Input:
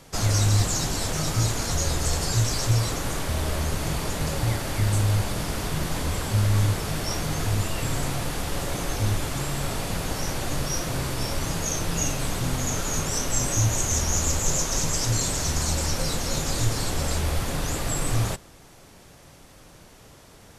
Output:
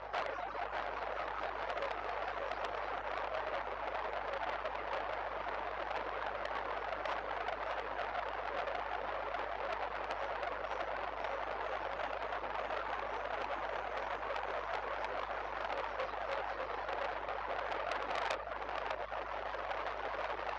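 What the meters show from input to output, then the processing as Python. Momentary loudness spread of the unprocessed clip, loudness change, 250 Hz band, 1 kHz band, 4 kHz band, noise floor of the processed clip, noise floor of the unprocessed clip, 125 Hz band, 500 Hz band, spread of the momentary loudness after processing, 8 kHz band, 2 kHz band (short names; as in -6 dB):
6 LU, -14.0 dB, -23.5 dB, -3.0 dB, -18.0 dB, -44 dBFS, -50 dBFS, -35.0 dB, -6.0 dB, 1 LU, under -40 dB, -6.0 dB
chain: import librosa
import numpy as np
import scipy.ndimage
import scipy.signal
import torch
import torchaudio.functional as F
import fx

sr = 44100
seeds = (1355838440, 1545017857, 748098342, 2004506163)

y = fx.delta_mod(x, sr, bps=32000, step_db=-31.5)
y = scipy.signal.sosfilt(scipy.signal.butter(4, 600.0, 'highpass', fs=sr, output='sos'), y)
y = fx.dereverb_blind(y, sr, rt60_s=0.92)
y = scipy.signal.sosfilt(scipy.signal.butter(2, 1200.0, 'lowpass', fs=sr, output='sos'), y)
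y = fx.dereverb_blind(y, sr, rt60_s=1.5)
y = fx.tilt_eq(y, sr, slope=-2.5)
y = fx.rider(y, sr, range_db=10, speed_s=2.0)
y = fx.add_hum(y, sr, base_hz=50, snr_db=20)
y = y + 10.0 ** (-4.0 / 20.0) * np.pad(y, (int(602 * sr / 1000.0), 0))[:len(y)]
y = fx.transformer_sat(y, sr, knee_hz=3000.0)
y = F.gain(torch.from_numpy(y), 6.0).numpy()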